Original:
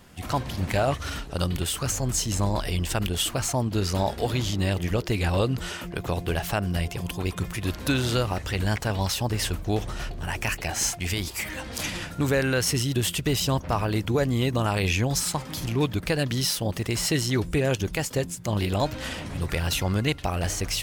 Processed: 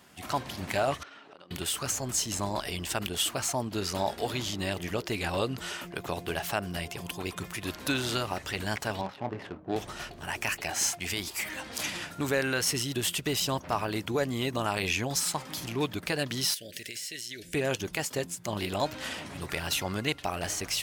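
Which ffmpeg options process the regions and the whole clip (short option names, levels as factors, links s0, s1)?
-filter_complex "[0:a]asettb=1/sr,asplit=3[s0][s1][s2];[s0]atrim=end=1.034[s3];[s1]atrim=start=1.03:end=1.51,asetpts=PTS-STARTPTS,afade=t=in:d=0.004:c=qsin,afade=t=out:st=0.476:d=0.004:c=qsin,highpass=290,lowpass=3000,acompressor=threshold=0.00708:ratio=12:attack=3.2:release=140:knee=1:detection=peak[s4];[s2]atrim=start=1.506[s5];[s3][s4]acrossfade=d=0.004:c1=hsin:c2=qsin[s6];[s6][s5]acrossfade=d=0.004:c1=qsin:c2=hsin,asettb=1/sr,asplit=3[s7][s8][s9];[s7]atrim=end=9.014[s10];[s8]atrim=start=9.01:end=9.76,asetpts=PTS-STARTPTS,afade=t=in:d=0.004:c=qsin,afade=t=out:st=0.746:d=0.004:c=qsin,highpass=130,lowpass=5100,asplit=2[s11][s12];[s12]adelay=26,volume=0.376[s13];[s11][s13]amix=inputs=2:normalize=0,atrim=end_sample=33075,adynamicsmooth=sensitivity=1.5:basefreq=640[s14];[s9]atrim=start=9.756[s15];[s10][s14]acrossfade=d=0.004:c1=hsin:c2=qsin[s16];[s16][s15]acrossfade=d=0.004:c1=qsin:c2=hsin,asettb=1/sr,asplit=3[s17][s18][s19];[s17]atrim=end=16.544[s20];[s18]atrim=start=16.54:end=17.54,asetpts=PTS-STARTPTS,afade=t=in:d=0.004:c=qsin,afade=t=out:st=0.996:d=0.004:c=qsin,tiltshelf=f=700:g=-7,acompressor=threshold=0.0251:ratio=12:attack=3.2:release=140:knee=1:detection=peak,asuperstop=centerf=1000:order=8:qfactor=1[s21];[s19]atrim=start=17.536[s22];[s20][s21]acrossfade=d=0.004:c1=hsin:c2=qsin[s23];[s23][s22]acrossfade=d=0.004:c1=qsin:c2=hsin,highpass=f=320:p=1,bandreject=f=500:w=12,volume=0.794"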